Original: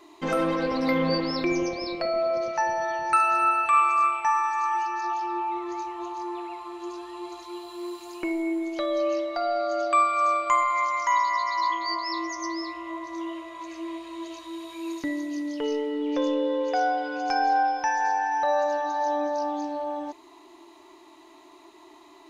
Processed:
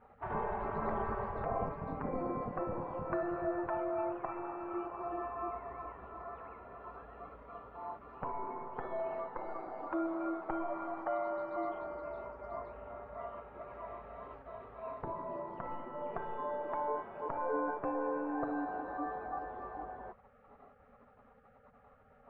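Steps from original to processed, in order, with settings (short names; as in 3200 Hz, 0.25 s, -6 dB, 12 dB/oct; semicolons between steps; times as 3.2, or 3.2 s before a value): spectral gate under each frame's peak -20 dB weak; LPF 1100 Hz 24 dB/oct; in parallel at +1 dB: limiter -41.5 dBFS, peak gain reduction 10.5 dB; on the sum: gain +4.5 dB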